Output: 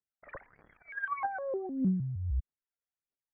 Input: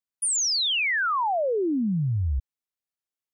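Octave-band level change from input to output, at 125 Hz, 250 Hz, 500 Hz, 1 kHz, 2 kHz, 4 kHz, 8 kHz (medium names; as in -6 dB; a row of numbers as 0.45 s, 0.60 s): -7.5 dB, -6.0 dB, -11.0 dB, -10.5 dB, -13.0 dB, under -40 dB, under -40 dB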